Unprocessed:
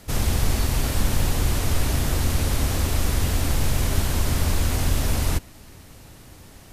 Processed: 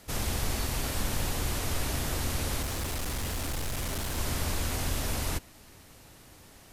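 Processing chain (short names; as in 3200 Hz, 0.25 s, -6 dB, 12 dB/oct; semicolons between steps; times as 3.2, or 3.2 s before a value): low shelf 250 Hz -6.5 dB; 2.62–4.18 hard clip -24.5 dBFS, distortion -15 dB; gain -4.5 dB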